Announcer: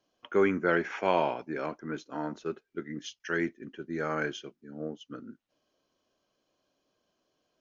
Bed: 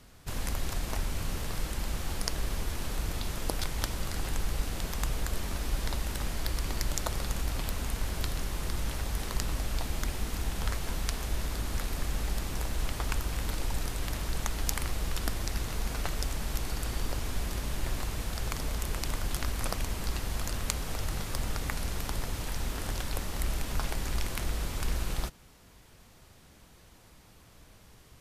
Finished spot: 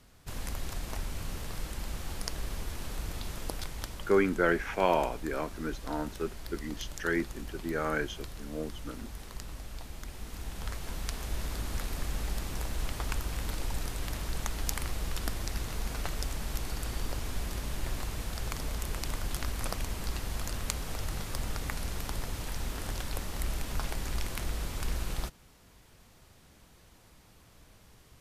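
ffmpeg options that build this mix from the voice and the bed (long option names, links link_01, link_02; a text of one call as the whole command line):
ffmpeg -i stem1.wav -i stem2.wav -filter_complex "[0:a]adelay=3750,volume=0dB[link_01];[1:a]volume=4.5dB,afade=type=out:start_time=3.37:duration=0.85:silence=0.473151,afade=type=in:start_time=10.04:duration=1.46:silence=0.375837[link_02];[link_01][link_02]amix=inputs=2:normalize=0" out.wav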